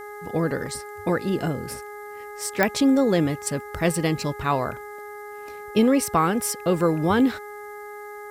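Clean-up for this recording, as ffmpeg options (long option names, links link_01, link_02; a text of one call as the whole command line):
ffmpeg -i in.wav -af "adeclick=threshold=4,bandreject=frequency=414.8:width_type=h:width=4,bandreject=frequency=829.6:width_type=h:width=4,bandreject=frequency=1244.4:width_type=h:width=4,bandreject=frequency=1659.2:width_type=h:width=4,bandreject=frequency=2074:width_type=h:width=4,agate=range=-21dB:threshold=-30dB" out.wav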